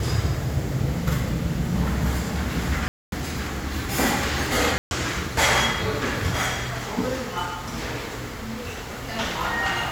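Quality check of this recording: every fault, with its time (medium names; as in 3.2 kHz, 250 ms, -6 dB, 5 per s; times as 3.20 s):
2.88–3.12 s: dropout 242 ms
4.78–4.91 s: dropout 131 ms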